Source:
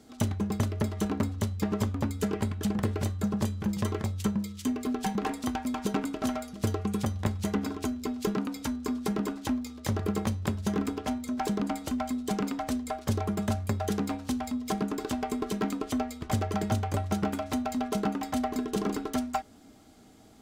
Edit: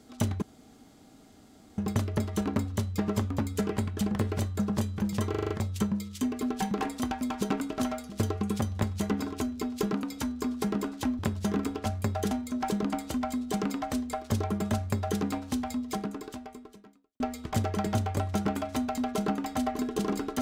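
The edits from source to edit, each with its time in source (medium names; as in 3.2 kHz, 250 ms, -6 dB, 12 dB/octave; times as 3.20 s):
0.42 s: insert room tone 1.36 s
3.94 s: stutter 0.04 s, 6 plays
9.63–10.41 s: delete
13.51–13.96 s: copy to 11.08 s
14.53–15.97 s: fade out quadratic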